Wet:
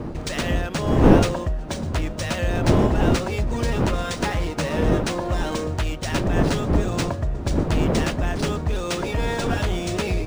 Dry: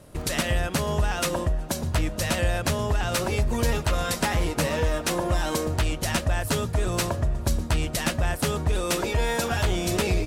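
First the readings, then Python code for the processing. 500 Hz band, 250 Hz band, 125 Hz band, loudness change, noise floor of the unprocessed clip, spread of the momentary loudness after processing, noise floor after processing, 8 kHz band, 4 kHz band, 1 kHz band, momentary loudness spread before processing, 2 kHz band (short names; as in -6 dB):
+3.5 dB, +7.0 dB, +3.5 dB, +3.0 dB, -35 dBFS, 8 LU, -31 dBFS, -4.0 dB, -1.0 dB, +2.0 dB, 2 LU, 0.0 dB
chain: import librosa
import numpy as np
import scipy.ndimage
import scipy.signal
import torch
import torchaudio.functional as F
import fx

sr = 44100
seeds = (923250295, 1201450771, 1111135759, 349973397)

y = fx.dmg_wind(x, sr, seeds[0], corner_hz=340.0, level_db=-24.0)
y = np.interp(np.arange(len(y)), np.arange(len(y))[::3], y[::3])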